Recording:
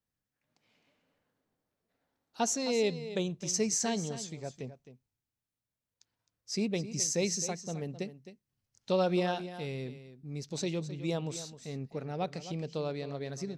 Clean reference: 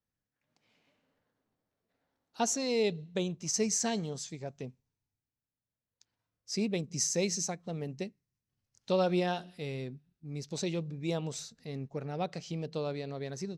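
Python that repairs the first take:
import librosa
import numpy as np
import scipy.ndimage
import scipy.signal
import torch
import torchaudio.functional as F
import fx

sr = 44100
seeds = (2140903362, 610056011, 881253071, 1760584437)

y = fx.fix_echo_inverse(x, sr, delay_ms=262, level_db=-13.0)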